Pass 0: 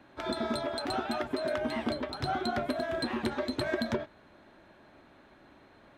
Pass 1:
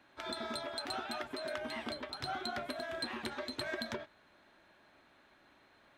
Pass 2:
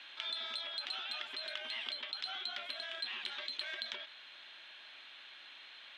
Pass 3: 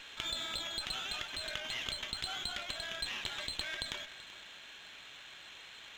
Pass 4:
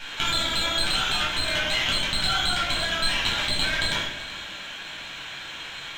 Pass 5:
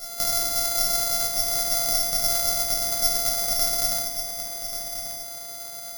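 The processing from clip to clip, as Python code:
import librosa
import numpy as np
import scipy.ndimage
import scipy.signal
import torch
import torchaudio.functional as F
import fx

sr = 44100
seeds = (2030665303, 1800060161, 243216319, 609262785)

y1 = fx.tilt_shelf(x, sr, db=-5.5, hz=870.0)
y1 = y1 * librosa.db_to_amplitude(-7.0)
y2 = fx.rider(y1, sr, range_db=10, speed_s=0.5)
y2 = fx.bandpass_q(y2, sr, hz=3200.0, q=3.3)
y2 = fx.env_flatten(y2, sr, amount_pct=50)
y2 = y2 * librosa.db_to_amplitude(6.0)
y3 = y2 + 10.0 ** (-16.0 / 20.0) * np.pad(y2, (int(382 * sr / 1000.0), 0))[:len(y2)]
y3 = fx.running_max(y3, sr, window=3)
y3 = y3 * librosa.db_to_amplitude(2.5)
y4 = fx.room_shoebox(y3, sr, seeds[0], volume_m3=910.0, walls='furnished', distance_m=7.9)
y4 = y4 * librosa.db_to_amplitude(6.0)
y5 = np.r_[np.sort(y4[:len(y4) // 64 * 64].reshape(-1, 64), axis=1).ravel(), y4[len(y4) // 64 * 64:]]
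y5 = y5 + 10.0 ** (-8.5 / 20.0) * np.pad(y5, (int(1136 * sr / 1000.0), 0))[:len(y5)]
y5 = (np.kron(scipy.signal.resample_poly(y5, 1, 8), np.eye(8)[0]) * 8)[:len(y5)]
y5 = y5 * librosa.db_to_amplitude(-7.5)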